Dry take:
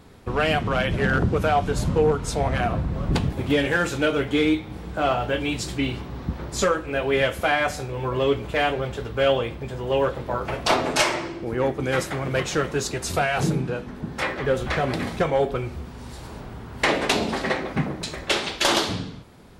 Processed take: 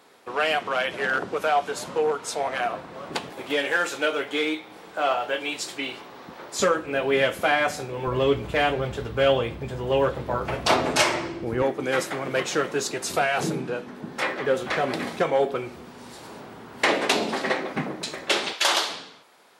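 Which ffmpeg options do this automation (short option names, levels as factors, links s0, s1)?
-af "asetnsamples=n=441:p=0,asendcmd='6.6 highpass f 170;8.07 highpass f 58;11.62 highpass f 240;18.53 highpass f 660',highpass=490"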